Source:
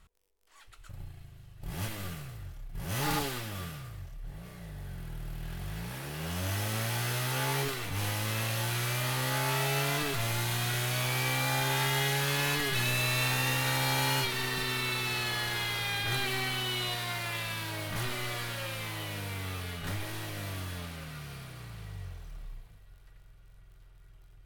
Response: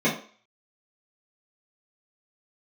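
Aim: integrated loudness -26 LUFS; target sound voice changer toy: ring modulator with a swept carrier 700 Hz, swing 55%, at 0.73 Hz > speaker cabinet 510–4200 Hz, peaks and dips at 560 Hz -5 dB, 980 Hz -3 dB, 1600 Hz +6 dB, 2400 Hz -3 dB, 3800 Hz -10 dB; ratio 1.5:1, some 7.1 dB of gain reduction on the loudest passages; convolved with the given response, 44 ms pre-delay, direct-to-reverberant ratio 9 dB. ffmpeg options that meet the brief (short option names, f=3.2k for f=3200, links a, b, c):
-filter_complex "[0:a]acompressor=threshold=-46dB:ratio=1.5,asplit=2[a][b];[1:a]atrim=start_sample=2205,adelay=44[c];[b][c]afir=irnorm=-1:irlink=0,volume=-24.5dB[d];[a][d]amix=inputs=2:normalize=0,aeval=exprs='val(0)*sin(2*PI*700*n/s+700*0.55/0.73*sin(2*PI*0.73*n/s))':c=same,highpass=510,equalizer=f=560:t=q:w=4:g=-5,equalizer=f=980:t=q:w=4:g=-3,equalizer=f=1.6k:t=q:w=4:g=6,equalizer=f=2.4k:t=q:w=4:g=-3,equalizer=f=3.8k:t=q:w=4:g=-10,lowpass=f=4.2k:w=0.5412,lowpass=f=4.2k:w=1.3066,volume=17dB"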